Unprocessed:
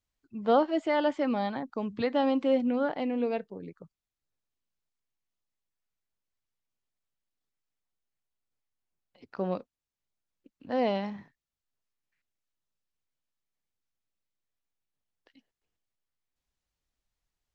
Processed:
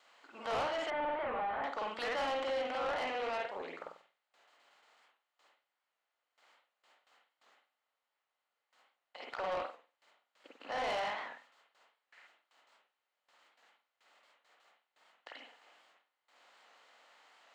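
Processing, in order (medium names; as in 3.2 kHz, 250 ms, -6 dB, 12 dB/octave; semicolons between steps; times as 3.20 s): spectral levelling over time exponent 0.6; high-pass 970 Hz 12 dB/octave; gate with hold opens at -59 dBFS; in parallel at +1 dB: peak limiter -25 dBFS, peak gain reduction 7.5 dB; on the sum: reverberation, pre-delay 47 ms, DRR -1.5 dB; saturation -24.5 dBFS, distortion -9 dB; 0.90–1.64 s: Gaussian low-pass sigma 3.6 samples; warped record 78 rpm, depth 100 cents; trim -6.5 dB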